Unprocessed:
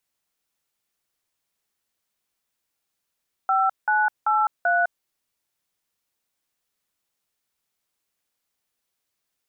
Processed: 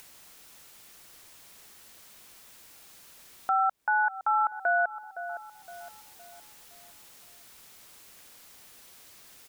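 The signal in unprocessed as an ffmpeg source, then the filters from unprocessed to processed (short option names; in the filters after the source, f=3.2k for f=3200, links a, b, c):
-f lavfi -i "aevalsrc='0.1*clip(min(mod(t,0.387),0.206-mod(t,0.387))/0.002,0,1)*(eq(floor(t/0.387),0)*(sin(2*PI*770*mod(t,0.387))+sin(2*PI*1336*mod(t,0.387)))+eq(floor(t/0.387),1)*(sin(2*PI*852*mod(t,0.387))+sin(2*PI*1477*mod(t,0.387)))+eq(floor(t/0.387),2)*(sin(2*PI*852*mod(t,0.387))+sin(2*PI*1336*mod(t,0.387)))+eq(floor(t/0.387),3)*(sin(2*PI*697*mod(t,0.387))+sin(2*PI*1477*mod(t,0.387))))':d=1.548:s=44100"
-filter_complex "[0:a]asplit=2[a][b];[b]acompressor=mode=upward:threshold=-28dB:ratio=2.5,volume=-2dB[c];[a][c]amix=inputs=2:normalize=0,asplit=2[d][e];[e]adelay=514,lowpass=f=890:p=1,volume=-17.5dB,asplit=2[f][g];[g]adelay=514,lowpass=f=890:p=1,volume=0.54,asplit=2[h][i];[i]adelay=514,lowpass=f=890:p=1,volume=0.54,asplit=2[j][k];[k]adelay=514,lowpass=f=890:p=1,volume=0.54,asplit=2[l][m];[m]adelay=514,lowpass=f=890:p=1,volume=0.54[n];[d][f][h][j][l][n]amix=inputs=6:normalize=0,alimiter=limit=-18dB:level=0:latency=1:release=144"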